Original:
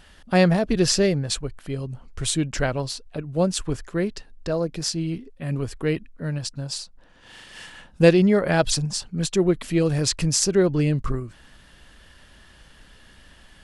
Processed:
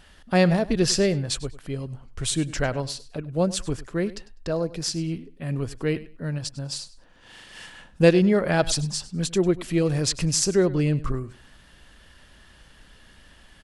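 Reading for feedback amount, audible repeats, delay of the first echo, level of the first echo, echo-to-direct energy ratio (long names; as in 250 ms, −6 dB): 21%, 2, 100 ms, −18.0 dB, −18.0 dB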